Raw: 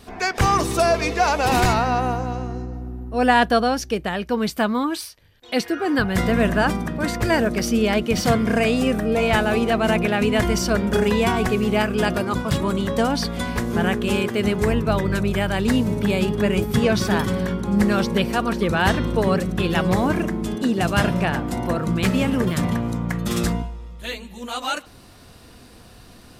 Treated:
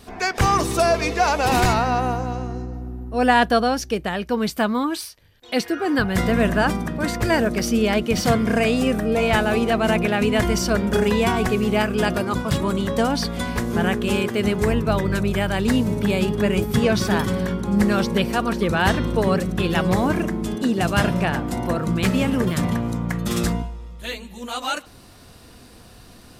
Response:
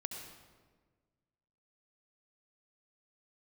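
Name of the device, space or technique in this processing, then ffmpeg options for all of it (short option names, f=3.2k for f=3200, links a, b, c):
exciter from parts: -filter_complex "[0:a]asplit=2[a][b];[b]highpass=3.6k,asoftclip=type=tanh:threshold=-38.5dB,volume=-13.5dB[c];[a][c]amix=inputs=2:normalize=0"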